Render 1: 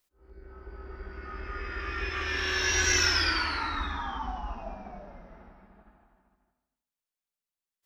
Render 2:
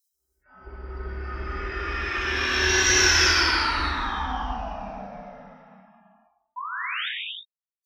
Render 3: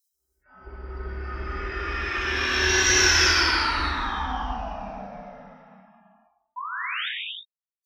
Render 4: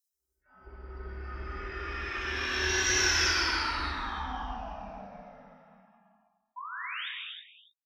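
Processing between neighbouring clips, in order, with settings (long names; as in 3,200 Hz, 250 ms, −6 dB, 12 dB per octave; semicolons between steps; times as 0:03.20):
noise reduction from a noise print of the clip's start 29 dB; sound drawn into the spectrogram rise, 0:06.56–0:07.09, 950–3,800 Hz −36 dBFS; reverb whose tail is shaped and stops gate 370 ms flat, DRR −3.5 dB; level +1.5 dB
no processing that can be heard
single-tap delay 286 ms −15.5 dB; level −7.5 dB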